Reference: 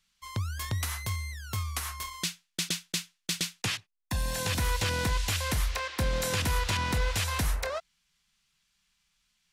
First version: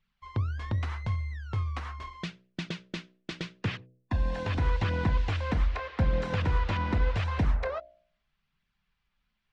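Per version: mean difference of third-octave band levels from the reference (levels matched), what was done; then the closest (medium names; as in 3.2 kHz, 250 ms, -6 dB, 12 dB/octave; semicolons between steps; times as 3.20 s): 10.0 dB: harmonic-percussive split percussive +3 dB; flange 0.81 Hz, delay 0.3 ms, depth 3.9 ms, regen -49%; tape spacing loss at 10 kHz 41 dB; de-hum 62.38 Hz, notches 11; trim +6.5 dB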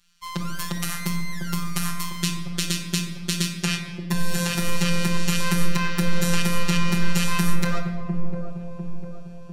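7.0 dB: in parallel at +2.5 dB: compression, threshold -35 dBFS, peak gain reduction 11 dB; on the sum: robot voice 173 Hz; feedback echo behind a low-pass 700 ms, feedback 48%, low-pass 620 Hz, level -3.5 dB; simulated room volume 1500 m³, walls mixed, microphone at 1.2 m; trim +1.5 dB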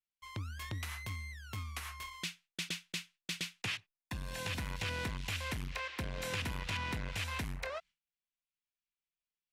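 3.5 dB: treble shelf 3.2 kHz -5.5 dB; gate with hold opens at -54 dBFS; peaking EQ 2.5 kHz +7.5 dB 1.1 oct; transformer saturation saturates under 260 Hz; trim -8 dB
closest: third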